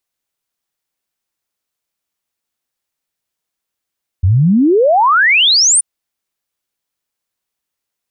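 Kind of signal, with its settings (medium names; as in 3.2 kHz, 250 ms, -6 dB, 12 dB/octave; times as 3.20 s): log sweep 84 Hz -> 9.6 kHz 1.58 s -7 dBFS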